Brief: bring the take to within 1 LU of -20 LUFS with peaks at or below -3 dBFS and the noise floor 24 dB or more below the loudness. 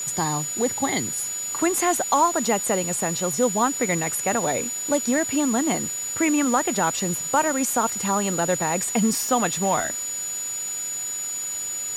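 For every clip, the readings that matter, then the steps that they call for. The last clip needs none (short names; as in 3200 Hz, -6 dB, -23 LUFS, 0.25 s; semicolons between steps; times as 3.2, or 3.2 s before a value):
steady tone 6900 Hz; tone level -27 dBFS; noise floor -30 dBFS; noise floor target -47 dBFS; loudness -22.5 LUFS; peak -7.5 dBFS; loudness target -20.0 LUFS
-> notch 6900 Hz, Q 30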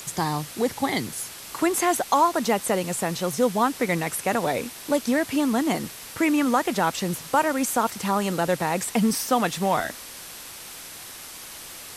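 steady tone none; noise floor -40 dBFS; noise floor target -48 dBFS
-> denoiser 8 dB, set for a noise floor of -40 dBFS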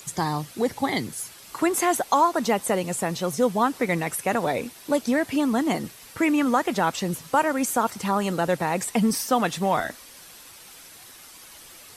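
noise floor -47 dBFS; noise floor target -49 dBFS
-> denoiser 6 dB, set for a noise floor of -47 dBFS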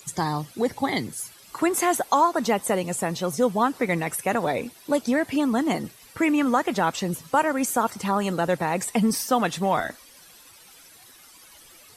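noise floor -51 dBFS; loudness -24.5 LUFS; peak -9.0 dBFS; loudness target -20.0 LUFS
-> gain +4.5 dB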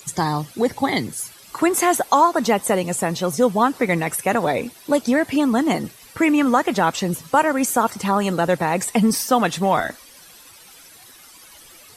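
loudness -20.0 LUFS; peak -4.5 dBFS; noise floor -46 dBFS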